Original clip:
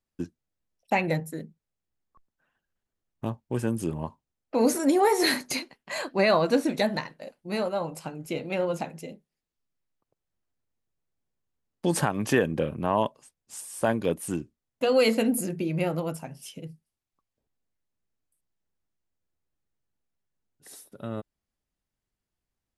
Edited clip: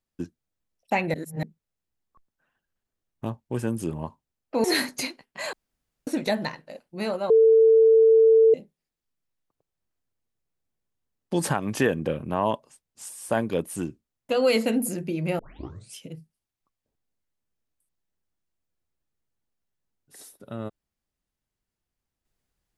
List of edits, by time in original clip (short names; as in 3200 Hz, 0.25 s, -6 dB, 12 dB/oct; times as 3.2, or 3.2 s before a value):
1.14–1.43 reverse
4.64–5.16 cut
6.05–6.59 room tone
7.82–9.06 bleep 447 Hz -12.5 dBFS
15.91 tape start 0.56 s